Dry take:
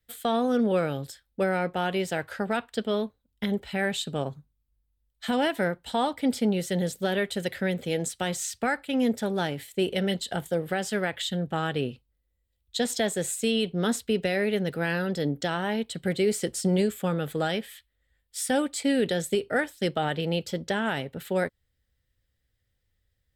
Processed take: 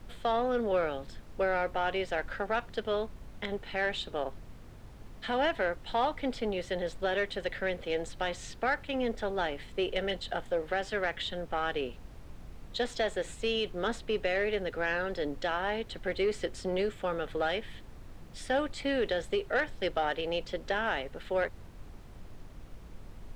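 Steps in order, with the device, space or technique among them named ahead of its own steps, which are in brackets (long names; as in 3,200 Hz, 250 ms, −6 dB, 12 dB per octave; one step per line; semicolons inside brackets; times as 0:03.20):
aircraft cabin announcement (band-pass filter 430–3,200 Hz; soft clipping −19 dBFS, distortion −21 dB; brown noise bed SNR 11 dB)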